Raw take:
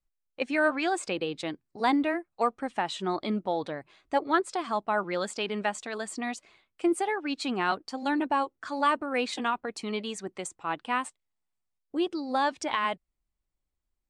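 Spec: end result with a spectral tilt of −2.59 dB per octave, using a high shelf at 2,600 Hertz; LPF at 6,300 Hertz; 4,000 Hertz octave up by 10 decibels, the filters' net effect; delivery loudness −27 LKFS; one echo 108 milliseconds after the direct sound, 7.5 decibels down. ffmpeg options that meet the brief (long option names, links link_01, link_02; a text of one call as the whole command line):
ffmpeg -i in.wav -af "lowpass=6300,highshelf=frequency=2600:gain=7,equalizer=frequency=4000:width_type=o:gain=7.5,aecho=1:1:108:0.422" out.wav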